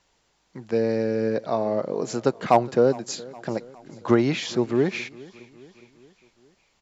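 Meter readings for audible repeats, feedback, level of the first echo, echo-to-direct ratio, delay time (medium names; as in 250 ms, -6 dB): 3, 54%, -21.5 dB, -20.0 dB, 413 ms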